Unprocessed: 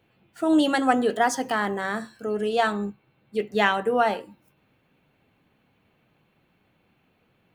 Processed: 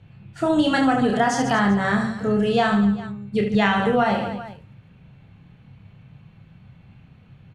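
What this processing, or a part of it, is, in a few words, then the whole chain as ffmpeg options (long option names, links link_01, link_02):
jukebox: -af "lowpass=7000,lowshelf=frequency=210:width_type=q:width=1.5:gain=14,aecho=1:1:30|75|142.5|243.8|395.6:0.631|0.398|0.251|0.158|0.1,acompressor=threshold=-21dB:ratio=5,volume=5.5dB"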